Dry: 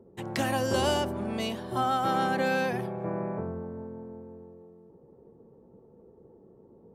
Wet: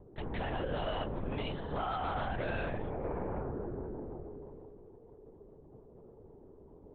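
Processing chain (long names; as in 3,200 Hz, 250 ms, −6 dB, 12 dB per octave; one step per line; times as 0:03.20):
downward compressor 3 to 1, threshold −32 dBFS, peak gain reduction 8 dB
soft clipping −28 dBFS, distortion −18 dB
linear-prediction vocoder at 8 kHz whisper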